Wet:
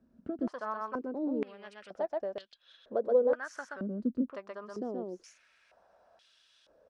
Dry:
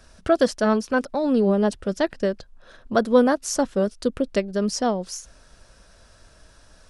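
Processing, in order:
on a send: single-tap delay 126 ms −3 dB
on the sum: downward compressor 2 to 1, threshold −25 dBFS, peak gain reduction 8 dB
band-pass on a step sequencer 2.1 Hz 240–3,300 Hz

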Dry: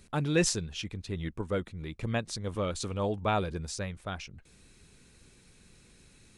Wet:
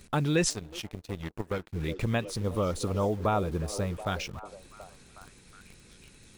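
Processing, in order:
0:02.25–0:03.97: gain on a spectral selection 1,400–9,200 Hz −8 dB
in parallel at −5 dB: bit reduction 8 bits
on the sum: downward compressor 2 to 1, threshold −31 dBFS, peak gain reduction 8 dB
echo through a band-pass that steps 365 ms, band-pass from 400 Hz, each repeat 0.7 octaves, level −9.5 dB
0:00.50–0:01.73: power curve on the samples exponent 2
level +3.5 dB

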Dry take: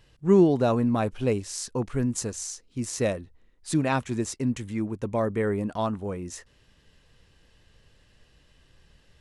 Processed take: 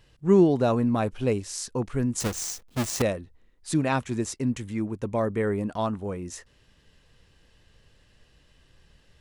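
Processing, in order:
0:02.20–0:03.02: each half-wave held at its own peak

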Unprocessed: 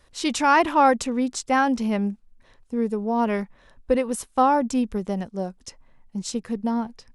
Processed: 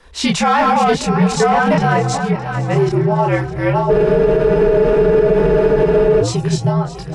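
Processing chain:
delay that plays each chunk backwards 583 ms, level −1.5 dB
on a send: echo with a time of its own for lows and highs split 590 Hz, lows 426 ms, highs 617 ms, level −16 dB
on the sum: gain into a clipping stage and back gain 12 dB
high-shelf EQ 5,600 Hz −10.5 dB
in parallel at +0.5 dB: downward compressor, threshold −29 dBFS, peak gain reduction 13.5 dB
on the sum: parametric band 140 Hz −6 dB 1.6 octaves
frequency shifter −73 Hz
multi-voice chorus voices 2, 0.43 Hz, delay 26 ms, depth 3.5 ms
frozen spectrum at 0:03.92, 2.29 s
boost into a limiter +15 dB
level −4 dB

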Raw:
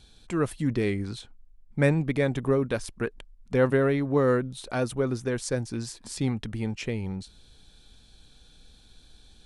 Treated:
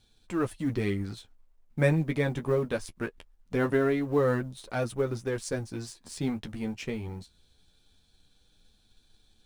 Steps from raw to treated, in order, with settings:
mu-law and A-law mismatch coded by A
flanger 0.22 Hz, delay 8.8 ms, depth 4.6 ms, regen −19%
level +1.5 dB

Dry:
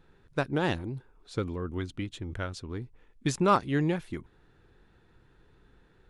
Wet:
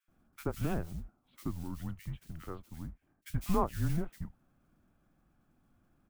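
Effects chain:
spectral tilt −2.5 dB per octave
single-sideband voice off tune −170 Hz 160–3,200 Hz
noise that follows the level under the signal 20 dB
multiband delay without the direct sound highs, lows 80 ms, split 1,700 Hz
level −7.5 dB

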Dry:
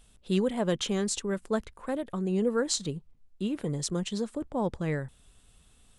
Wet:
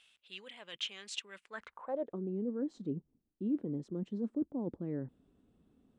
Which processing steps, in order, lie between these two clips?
reversed playback
downward compressor, threshold −35 dBFS, peak gain reduction 12.5 dB
reversed playback
band-pass filter sweep 2,700 Hz → 280 Hz, 0:01.40–0:02.24
level +7 dB

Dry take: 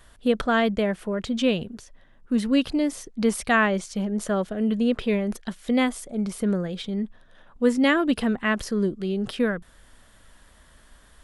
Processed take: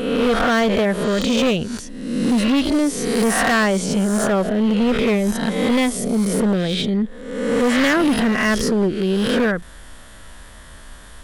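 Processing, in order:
peak hold with a rise ahead of every peak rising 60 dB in 0.93 s
in parallel at +1 dB: downward compressor, threshold −29 dBFS, peak gain reduction 14.5 dB
on the sum: hard clipping −17 dBFS, distortion −11 dB
level +3.5 dB

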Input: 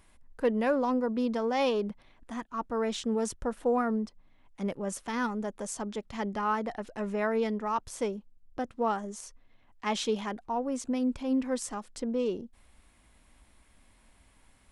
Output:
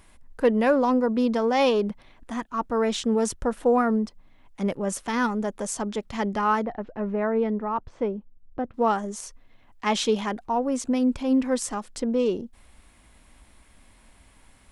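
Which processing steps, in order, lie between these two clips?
0:06.65–0:08.74: head-to-tape spacing loss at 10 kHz 42 dB
level +6.5 dB

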